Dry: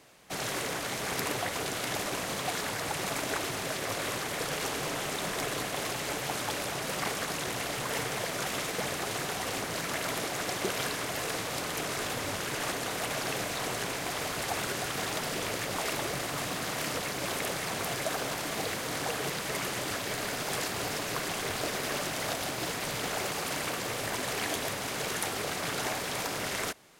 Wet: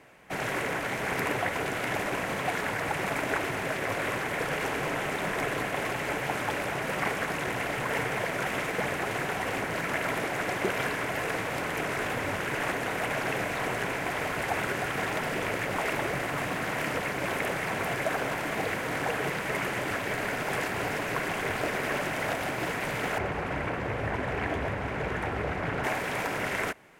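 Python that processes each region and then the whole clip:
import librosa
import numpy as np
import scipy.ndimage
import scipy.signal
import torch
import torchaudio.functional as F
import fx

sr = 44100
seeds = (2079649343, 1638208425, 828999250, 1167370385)

y = fx.chain(x, sr, fx.lowpass(hz=1700.0, slope=6),
    fx.peak_eq(hz=64.0, db=14.5, octaves=1.3),
    fx.doppler_dist(depth_ms=0.11), at=(23.18, 25.84))
y = fx.high_shelf_res(y, sr, hz=3000.0, db=-9.5, q=1.5)
y = fx.notch(y, sr, hz=1200.0, q=15.0)
y = y * 10.0 ** (3.5 / 20.0)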